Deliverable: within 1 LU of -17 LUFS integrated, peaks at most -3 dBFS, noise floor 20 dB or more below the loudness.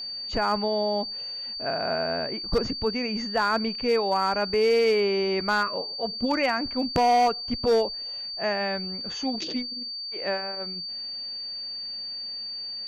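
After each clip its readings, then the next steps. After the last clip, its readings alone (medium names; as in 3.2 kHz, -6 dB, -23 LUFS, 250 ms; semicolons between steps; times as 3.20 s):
clipped samples 0.6%; clipping level -16.0 dBFS; steady tone 4.6 kHz; tone level -32 dBFS; loudness -26.0 LUFS; peak level -16.0 dBFS; loudness target -17.0 LUFS
-> clip repair -16 dBFS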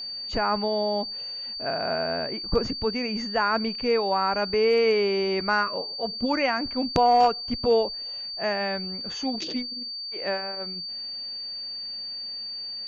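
clipped samples 0.0%; steady tone 4.6 kHz; tone level -32 dBFS
-> band-stop 4.6 kHz, Q 30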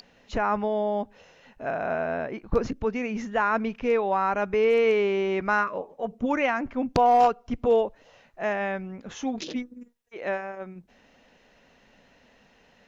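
steady tone not found; loudness -26.0 LUFS; peak level -7.5 dBFS; loudness target -17.0 LUFS
-> trim +9 dB; peak limiter -3 dBFS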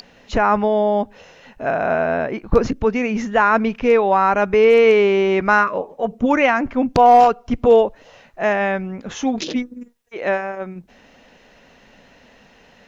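loudness -17.0 LUFS; peak level -3.0 dBFS; noise floor -51 dBFS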